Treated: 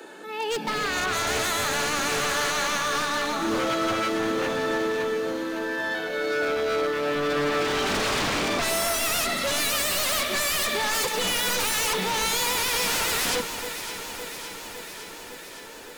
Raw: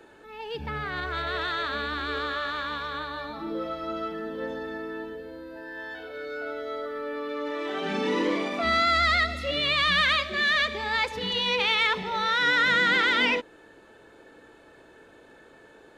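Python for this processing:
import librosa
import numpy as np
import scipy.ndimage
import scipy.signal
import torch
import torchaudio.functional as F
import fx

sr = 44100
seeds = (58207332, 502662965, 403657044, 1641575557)

p1 = fx.octave_divider(x, sr, octaves=2, level_db=2.0)
p2 = scipy.signal.sosfilt(scipy.signal.butter(16, 160.0, 'highpass', fs=sr, output='sos'), p1)
p3 = fx.bass_treble(p2, sr, bass_db=-3, treble_db=7)
p4 = fx.rider(p3, sr, range_db=4, speed_s=0.5)
p5 = p3 + (p4 * 10.0 ** (-2.0 / 20.0))
p6 = 10.0 ** (-23.0 / 20.0) * (np.abs((p5 / 10.0 ** (-23.0 / 20.0) + 3.0) % 4.0 - 2.0) - 1.0)
p7 = p6 + fx.echo_alternate(p6, sr, ms=280, hz=1500.0, feedback_pct=84, wet_db=-9, dry=0)
y = p7 * 10.0 ** (2.0 / 20.0)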